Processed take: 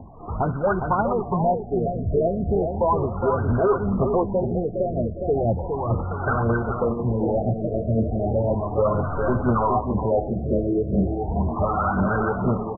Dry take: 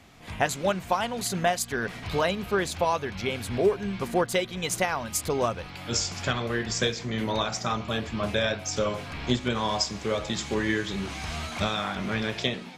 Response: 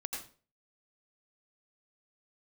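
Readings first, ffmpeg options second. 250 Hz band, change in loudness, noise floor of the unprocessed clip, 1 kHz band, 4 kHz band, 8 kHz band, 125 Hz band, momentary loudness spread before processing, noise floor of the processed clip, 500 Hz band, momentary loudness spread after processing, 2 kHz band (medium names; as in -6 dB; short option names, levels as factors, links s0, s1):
+7.0 dB, +5.0 dB, -41 dBFS, +5.5 dB, under -40 dB, under -40 dB, +9.5 dB, 5 LU, -31 dBFS, +6.0 dB, 4 LU, -4.0 dB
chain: -filter_complex "[0:a]asplit=2[s0][s1];[s1]asoftclip=type=hard:threshold=0.0562,volume=0.668[s2];[s0][s2]amix=inputs=2:normalize=0,aphaser=in_gain=1:out_gain=1:delay=3:decay=0.59:speed=2:type=triangular,asoftclip=type=tanh:threshold=0.0944,lowpass=f=3400:t=q:w=4.9,asplit=2[s3][s4];[s4]aecho=0:1:411|822|1233|1644|2055:0.501|0.19|0.0724|0.0275|0.0105[s5];[s3][s5]amix=inputs=2:normalize=0,afftfilt=real='re*lt(b*sr/1024,690*pow(1600/690,0.5+0.5*sin(2*PI*0.35*pts/sr)))':imag='im*lt(b*sr/1024,690*pow(1600/690,0.5+0.5*sin(2*PI*0.35*pts/sr)))':win_size=1024:overlap=0.75,volume=1.68"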